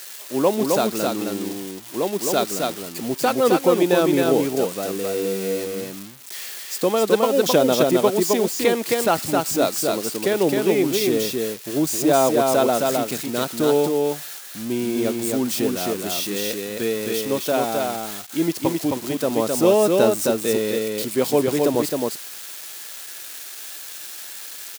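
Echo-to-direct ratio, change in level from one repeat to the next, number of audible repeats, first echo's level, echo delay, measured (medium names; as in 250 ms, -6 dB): -3.0 dB, no regular repeats, 1, -3.0 dB, 264 ms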